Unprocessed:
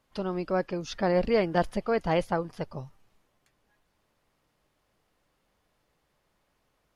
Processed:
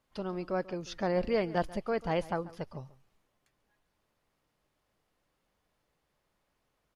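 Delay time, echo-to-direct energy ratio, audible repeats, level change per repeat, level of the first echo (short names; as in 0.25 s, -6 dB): 0.14 s, -19.0 dB, 1, no steady repeat, -19.0 dB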